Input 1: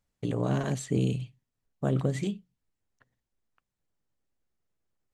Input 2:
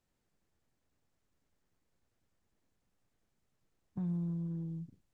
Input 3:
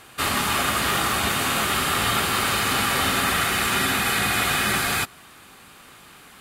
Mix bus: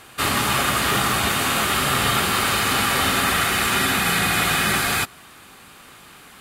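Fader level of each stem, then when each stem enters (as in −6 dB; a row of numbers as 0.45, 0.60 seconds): −5.0, +2.0, +2.0 decibels; 0.00, 0.00, 0.00 seconds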